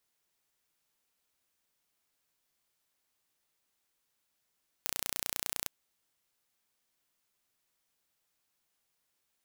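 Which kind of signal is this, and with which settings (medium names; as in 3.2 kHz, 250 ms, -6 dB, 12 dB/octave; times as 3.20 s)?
pulse train 29.9 per s, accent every 0, -6 dBFS 0.82 s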